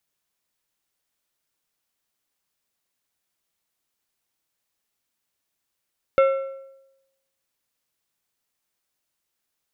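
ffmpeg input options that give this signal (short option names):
-f lavfi -i "aevalsrc='0.266*pow(10,-3*t/0.92)*sin(2*PI*540*t)+0.106*pow(10,-3*t/0.699)*sin(2*PI*1350*t)+0.0422*pow(10,-3*t/0.607)*sin(2*PI*2160*t)+0.0168*pow(10,-3*t/0.568)*sin(2*PI*2700*t)+0.00668*pow(10,-3*t/0.525)*sin(2*PI*3510*t)':d=1.55:s=44100"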